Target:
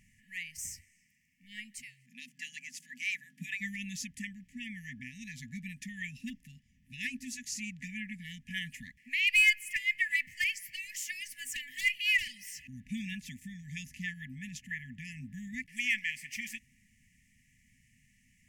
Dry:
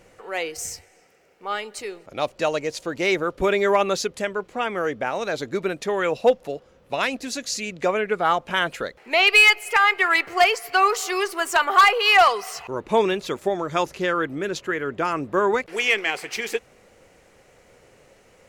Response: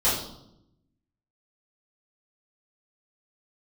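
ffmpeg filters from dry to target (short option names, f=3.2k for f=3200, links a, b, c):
-filter_complex "[0:a]asplit=3[a][b][c];[a]afade=t=out:st=1.81:d=0.02[d];[b]afreqshift=130,afade=t=in:st=1.81:d=0.02,afade=t=out:st=3.6:d=0.02[e];[c]afade=t=in:st=3.6:d=0.02[f];[d][e][f]amix=inputs=3:normalize=0,equalizer=f=4k:t=o:w=0.58:g=-14,afftfilt=real='re*(1-between(b*sr/4096,260,1700))':imag='im*(1-between(b*sr/4096,260,1700))':win_size=4096:overlap=0.75,volume=-7dB"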